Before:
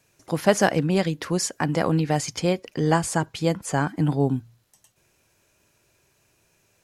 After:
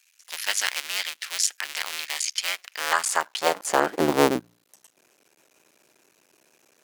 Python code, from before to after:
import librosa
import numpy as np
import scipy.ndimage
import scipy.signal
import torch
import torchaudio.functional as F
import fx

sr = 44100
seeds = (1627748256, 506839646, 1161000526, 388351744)

y = fx.cycle_switch(x, sr, every=2, mode='muted')
y = fx.filter_sweep_highpass(y, sr, from_hz=2500.0, to_hz=290.0, start_s=2.41, end_s=4.2, q=1.1)
y = F.gain(torch.from_numpy(y), 6.0).numpy()